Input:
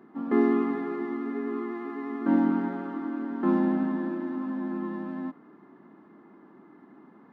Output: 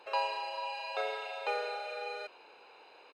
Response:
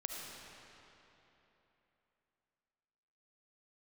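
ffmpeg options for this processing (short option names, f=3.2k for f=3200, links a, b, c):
-filter_complex "[0:a]aecho=1:1:1.8:0.72,asplit=2[a][b];[b]acompressor=threshold=-37dB:ratio=6,volume=-0.5dB[c];[a][c]amix=inputs=2:normalize=0,asetrate=103194,aresample=44100,volume=-7.5dB"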